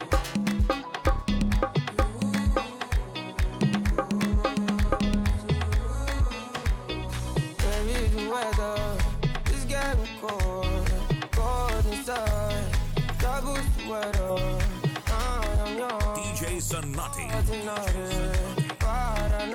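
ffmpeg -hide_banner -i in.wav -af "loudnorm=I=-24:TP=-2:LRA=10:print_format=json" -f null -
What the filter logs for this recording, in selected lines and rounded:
"input_i" : "-28.4",
"input_tp" : "-10.4",
"input_lra" : "1.6",
"input_thresh" : "-38.4",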